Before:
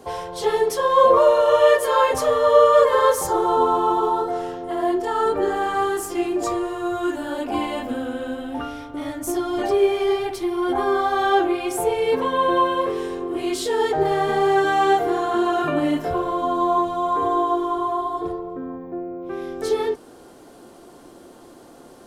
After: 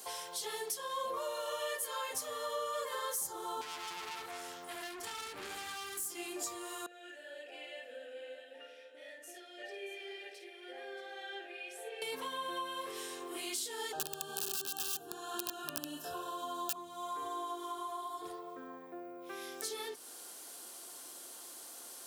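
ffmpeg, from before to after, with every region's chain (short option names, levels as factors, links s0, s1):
-filter_complex "[0:a]asettb=1/sr,asplit=3[s0][s1][s2];[s0]atrim=end=3.614[s3];[s1]atrim=start=3.61:end=6.06,asetpts=PTS-STARTPTS,afade=t=in:d=0.004:c=qsin,afade=t=out:st=2.446:d=0.004:c=qsin,aeval=exprs='(tanh(20*val(0)+0.55)-tanh(0.55))/20':c=same,asubboost=boost=6:cutoff=230[s4];[s2]atrim=start=6.056[s5];[s3][s4]acrossfade=d=0.004:c1=hsin:c2=qsin[s6];[s6][s5]acrossfade=d=0.004:c1=qsin:c2=hsin,asettb=1/sr,asplit=3[s7][s8][s9];[s7]atrim=end=6.864[s10];[s8]atrim=start=6.86:end=12.02,asetpts=PTS-STARTPTS,afade=t=in:d=0.004:c=qsin,afade=t=out:st=5.156:d=0.004:c=qsin,asplit=3[s11][s12][s13];[s11]bandpass=f=530:t=q:w=8,volume=1[s14];[s12]bandpass=f=1840:t=q:w=8,volume=0.501[s15];[s13]bandpass=f=2480:t=q:w=8,volume=0.355[s16];[s14][s15][s16]amix=inputs=3:normalize=0,aecho=1:1:53|627:0.398|0.316,atrim=end_sample=227556[s17];[s9]atrim=start=12.016[s18];[s10][s17]acrossfade=d=0.004:c1=hsin:c2=qsin[s19];[s19][s18]acrossfade=d=0.004:c1=qsin:c2=hsin,asettb=1/sr,asplit=3[s20][s21][s22];[s20]atrim=end=13.924[s23];[s21]atrim=start=13.92:end=16.76,asetpts=PTS-STARTPTS,afade=t=in:d=0.004:c=qsin,afade=t=out:st=2.836:d=0.004:c=qsin,equalizer=f=2300:t=o:w=0.26:g=7,aeval=exprs='(mod(3.98*val(0)+1,2)-1)/3.98':c=same,asuperstop=centerf=2100:order=20:qfactor=3[s24];[s22]atrim=start=16.756[s25];[s23][s24]acrossfade=d=0.004:c1=hsin:c2=qsin[s26];[s26][s25]acrossfade=d=0.004:c1=qsin:c2=hsin,aderivative,acrossover=split=270[s27][s28];[s28]acompressor=threshold=0.00316:ratio=3[s29];[s27][s29]amix=inputs=2:normalize=0,volume=2.66"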